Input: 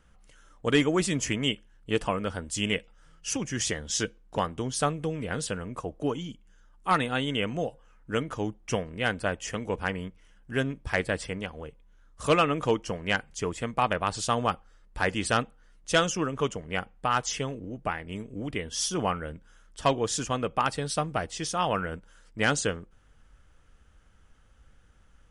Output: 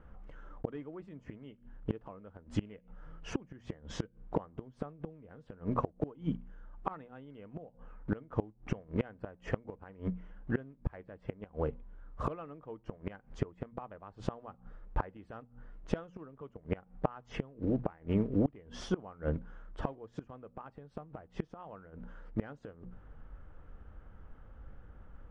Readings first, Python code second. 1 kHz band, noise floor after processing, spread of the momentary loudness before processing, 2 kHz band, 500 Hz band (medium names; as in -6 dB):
-14.5 dB, -64 dBFS, 11 LU, -20.0 dB, -10.5 dB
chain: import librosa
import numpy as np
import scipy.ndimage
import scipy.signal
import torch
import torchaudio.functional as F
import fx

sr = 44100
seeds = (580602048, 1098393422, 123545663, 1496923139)

y = fx.block_float(x, sr, bits=5)
y = scipy.signal.sosfilt(scipy.signal.butter(2, 1100.0, 'lowpass', fs=sr, output='sos'), y)
y = fx.hum_notches(y, sr, base_hz=60, count=4)
y = fx.gate_flip(y, sr, shuts_db=-26.0, range_db=-28)
y = F.gain(torch.from_numpy(y), 8.0).numpy()